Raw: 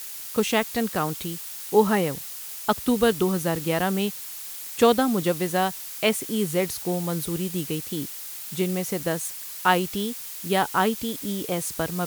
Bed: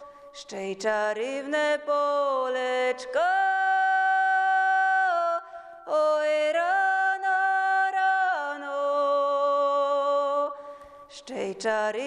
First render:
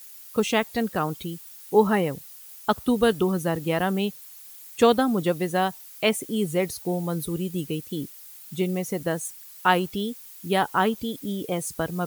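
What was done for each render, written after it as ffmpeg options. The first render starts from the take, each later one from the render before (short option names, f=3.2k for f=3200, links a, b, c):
-af "afftdn=nr=12:nf=-37"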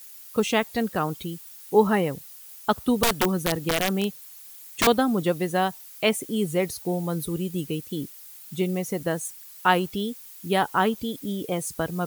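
-filter_complex "[0:a]asettb=1/sr,asplit=3[a][b][c];[a]atrim=end=3.034[d];[b]atrim=start=3.03:end=4.87,asetpts=PTS-STARTPTS,afade=t=in:d=0.004:c=qsin,afade=t=out:st=1.836:d=0.004:c=qsin,aeval=exprs='(mod(5.62*val(0)+1,2)-1)/5.62':c=same[e];[c]atrim=start=4.866[f];[d][e]acrossfade=d=0.004:c1=hsin:c2=qsin[g];[g][f]acrossfade=d=0.004:c1=qsin:c2=hsin"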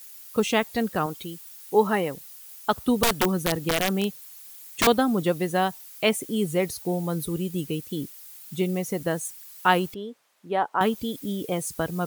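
-filter_complex "[0:a]asettb=1/sr,asplit=3[a][b][c];[a]atrim=end=1.064[d];[b]atrim=start=1.06:end=2.73,asetpts=PTS-STARTPTS,afade=t=in:d=0.004:c=qsin,afade=t=out:st=1.666:d=0.004:c=qsin,lowshelf=f=160:g=-11.5[e];[c]atrim=start=2.726[f];[d][e]acrossfade=d=0.004:c1=hsin:c2=qsin[g];[g][f]acrossfade=d=0.004:c1=qsin:c2=hsin,asettb=1/sr,asplit=3[h][i][j];[h]atrim=end=9.944[k];[i]atrim=start=9.94:end=10.81,asetpts=PTS-STARTPTS,afade=t=in:d=0.004:c=qsin,afade=t=out:st=0.866:d=0.004:c=qsin,bandpass=f=740:t=q:w=0.88[l];[j]atrim=start=10.806[m];[k][l]acrossfade=d=0.004:c1=hsin:c2=qsin[n];[n][m]acrossfade=d=0.004:c1=qsin:c2=hsin"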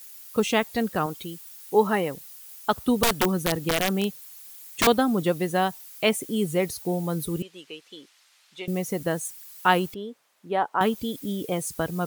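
-filter_complex "[0:a]asettb=1/sr,asplit=3[a][b][c];[a]atrim=end=7.424[d];[b]atrim=start=7.42:end=8.68,asetpts=PTS-STARTPTS,afade=t=in:d=0.004:c=qsin,afade=t=out:st=1.256:d=0.004:c=qsin,highpass=750,lowpass=4.2k[e];[c]atrim=start=8.676[f];[d][e]acrossfade=d=0.004:c1=hsin:c2=qsin[g];[g][f]acrossfade=d=0.004:c1=qsin:c2=hsin"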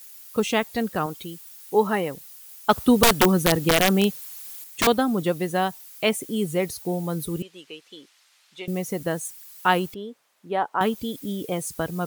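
-filter_complex "[0:a]asettb=1/sr,asplit=3[a][b][c];[a]atrim=end=2.694[d];[b]atrim=start=2.69:end=4.64,asetpts=PTS-STARTPTS,afade=t=in:d=0.004:c=qsin,afade=t=out:st=1.946:d=0.004:c=qsin,acontrast=44[e];[c]atrim=start=4.636[f];[d][e]acrossfade=d=0.004:c1=hsin:c2=qsin[g];[g][f]acrossfade=d=0.004:c1=qsin:c2=hsin"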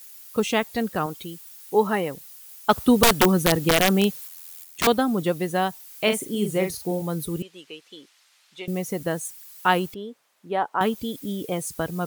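-filter_complex "[0:a]asettb=1/sr,asplit=3[a][b][c];[a]atrim=end=4.274[d];[b]atrim=start=4.27:end=4.84,asetpts=PTS-STARTPTS,afade=t=in:d=0.004:c=qsin,afade=t=out:st=0.566:d=0.004:c=qsin,aeval=exprs='val(0)*sin(2*PI*42*n/s)':c=same[e];[c]atrim=start=4.836[f];[d][e]acrossfade=d=0.004:c1=hsin:c2=qsin[g];[g][f]acrossfade=d=0.004:c1=qsin:c2=hsin,asettb=1/sr,asplit=3[h][i][j];[h]atrim=end=5.854[k];[i]atrim=start=5.85:end=7.02,asetpts=PTS-STARTPTS,afade=t=in:d=0.004:c=qsin,afade=t=out:st=1.166:d=0.004:c=qsin,asplit=2[l][m];[m]adelay=43,volume=-6.5dB[n];[l][n]amix=inputs=2:normalize=0,atrim=end_sample=51597[o];[j]atrim=start=7.016[p];[k][o]acrossfade=d=0.004:c1=hsin:c2=qsin[q];[q][p]acrossfade=d=0.004:c1=qsin:c2=hsin"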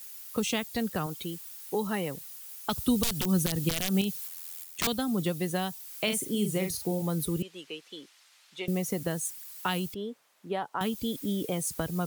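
-filter_complex "[0:a]acrossover=split=190|3000[a][b][c];[b]acompressor=threshold=-30dB:ratio=6[d];[a][d][c]amix=inputs=3:normalize=0,alimiter=limit=-14.5dB:level=0:latency=1:release=71"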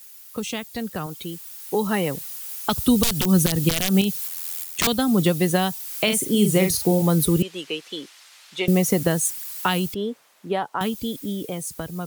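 -af "dynaudnorm=f=210:g=17:m=12.5dB,alimiter=limit=-7dB:level=0:latency=1:release=452"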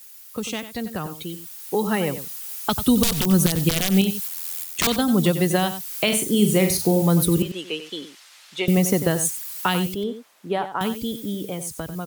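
-filter_complex "[0:a]asplit=2[a][b];[b]adelay=93.29,volume=-11dB,highshelf=f=4k:g=-2.1[c];[a][c]amix=inputs=2:normalize=0"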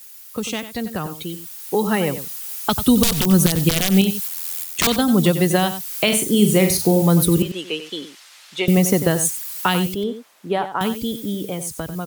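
-af "volume=3dB"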